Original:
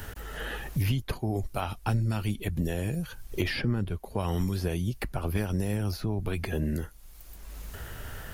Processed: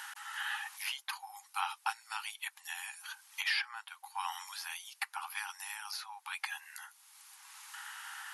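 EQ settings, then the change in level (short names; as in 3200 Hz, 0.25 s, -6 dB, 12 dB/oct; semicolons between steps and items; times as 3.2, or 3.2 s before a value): brick-wall FIR band-pass 770–12000 Hz; +1.0 dB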